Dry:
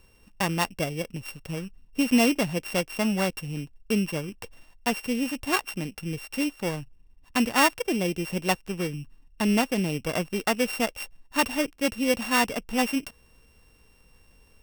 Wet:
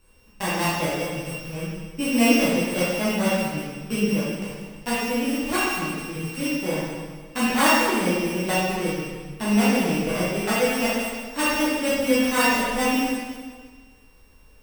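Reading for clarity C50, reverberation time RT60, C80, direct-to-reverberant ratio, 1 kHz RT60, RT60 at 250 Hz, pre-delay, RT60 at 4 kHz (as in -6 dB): -2.0 dB, 1.6 s, 0.5 dB, -10.0 dB, 1.6 s, 1.6 s, 5 ms, 1.5 s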